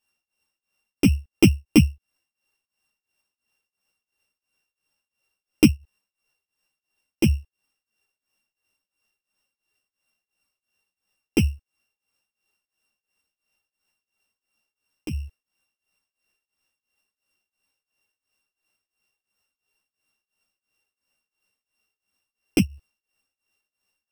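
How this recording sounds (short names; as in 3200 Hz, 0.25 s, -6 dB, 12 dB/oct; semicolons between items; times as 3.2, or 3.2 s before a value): a buzz of ramps at a fixed pitch in blocks of 16 samples; tremolo triangle 2.9 Hz, depth 95%; a shimmering, thickened sound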